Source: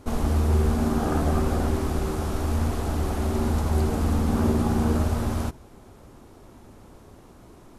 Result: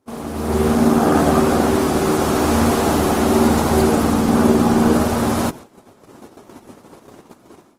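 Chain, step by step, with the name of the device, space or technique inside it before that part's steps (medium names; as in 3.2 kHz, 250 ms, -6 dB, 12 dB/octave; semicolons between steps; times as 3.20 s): video call (high-pass 180 Hz 12 dB/octave; level rider gain up to 16 dB; gate -33 dBFS, range -15 dB; Opus 20 kbps 48 kHz)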